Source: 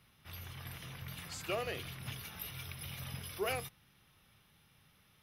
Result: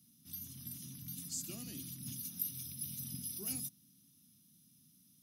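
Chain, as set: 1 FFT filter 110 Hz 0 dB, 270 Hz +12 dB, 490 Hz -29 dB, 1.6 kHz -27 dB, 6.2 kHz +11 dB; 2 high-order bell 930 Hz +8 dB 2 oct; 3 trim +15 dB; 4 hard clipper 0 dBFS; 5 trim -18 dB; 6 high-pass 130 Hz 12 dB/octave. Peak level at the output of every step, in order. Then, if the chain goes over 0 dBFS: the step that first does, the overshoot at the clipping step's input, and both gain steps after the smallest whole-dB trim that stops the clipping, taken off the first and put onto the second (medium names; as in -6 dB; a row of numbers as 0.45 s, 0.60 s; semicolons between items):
-20.5 dBFS, -20.5 dBFS, -5.5 dBFS, -5.5 dBFS, -23.5 dBFS, -23.0 dBFS; nothing clips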